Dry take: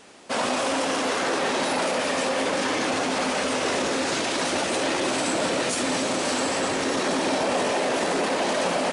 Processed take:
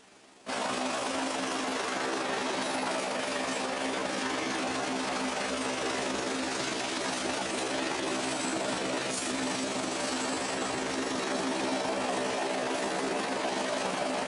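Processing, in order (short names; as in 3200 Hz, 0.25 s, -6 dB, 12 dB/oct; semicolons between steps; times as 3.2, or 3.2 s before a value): notch 520 Hz, Q 12; granular stretch 1.6×, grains 82 ms; gain -5.5 dB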